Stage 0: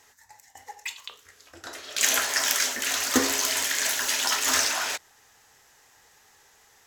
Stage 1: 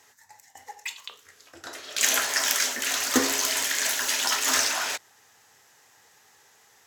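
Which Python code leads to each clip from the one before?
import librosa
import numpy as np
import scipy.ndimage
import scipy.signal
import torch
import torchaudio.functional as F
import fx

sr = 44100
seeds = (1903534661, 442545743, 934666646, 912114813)

y = scipy.signal.sosfilt(scipy.signal.butter(4, 93.0, 'highpass', fs=sr, output='sos'), x)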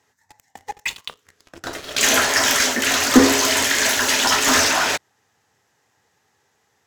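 y = fx.high_shelf(x, sr, hz=7100.0, db=-7.5)
y = fx.leveller(y, sr, passes=3)
y = fx.low_shelf(y, sr, hz=400.0, db=10.5)
y = F.gain(torch.from_numpy(y), -1.5).numpy()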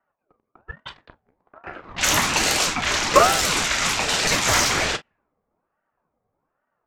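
y = fx.room_early_taps(x, sr, ms=(33, 45), db=(-15.5, -16.5))
y = fx.env_lowpass(y, sr, base_hz=470.0, full_db=-13.0)
y = fx.ring_lfo(y, sr, carrier_hz=690.0, swing_pct=55, hz=1.2)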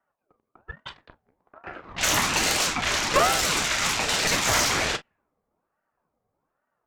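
y = fx.tube_stage(x, sr, drive_db=14.0, bias=0.5)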